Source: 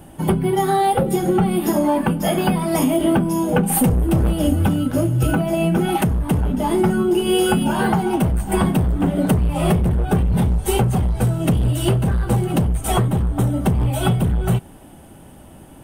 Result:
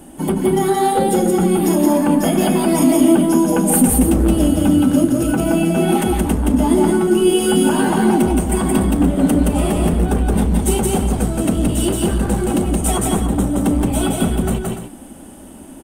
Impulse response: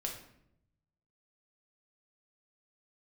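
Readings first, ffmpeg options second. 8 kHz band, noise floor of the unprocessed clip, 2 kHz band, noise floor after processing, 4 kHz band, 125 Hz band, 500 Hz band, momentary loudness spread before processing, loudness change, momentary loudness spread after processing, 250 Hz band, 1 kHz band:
+7.5 dB, -43 dBFS, +1.0 dB, -37 dBFS, +2.0 dB, -2.5 dB, +3.5 dB, 3 LU, +3.0 dB, 5 LU, +5.0 dB, +1.0 dB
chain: -filter_complex "[0:a]alimiter=limit=-11.5dB:level=0:latency=1,equalizer=f=125:t=o:w=1:g=-12,equalizer=f=250:t=o:w=1:g=10,equalizer=f=8k:t=o:w=1:g=8,asplit=2[a][b];[b]aecho=0:1:172|291.5:0.794|0.316[c];[a][c]amix=inputs=2:normalize=0"

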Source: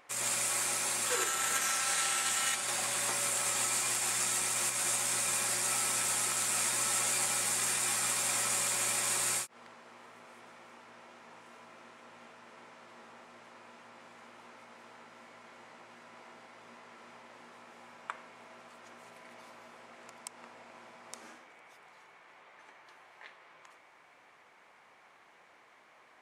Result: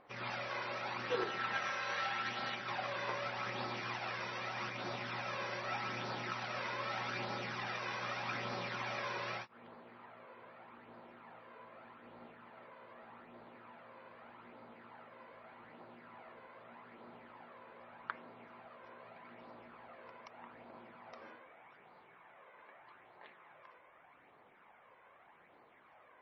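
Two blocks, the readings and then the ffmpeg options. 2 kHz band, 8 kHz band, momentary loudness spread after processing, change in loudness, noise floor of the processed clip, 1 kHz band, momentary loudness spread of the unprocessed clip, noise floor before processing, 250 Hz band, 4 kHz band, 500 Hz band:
-4.0 dB, -33.0 dB, 18 LU, -10.5 dB, -64 dBFS, -1.5 dB, 11 LU, -61 dBFS, 0.0 dB, -9.5 dB, +0.5 dB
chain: -af "flanger=delay=0.2:depth=1.8:regen=36:speed=0.82:shape=sinusoidal,adynamicsmooth=sensitivity=1:basefreq=2.3k,volume=4.5dB" -ar 24000 -c:a libmp3lame -b:a 24k

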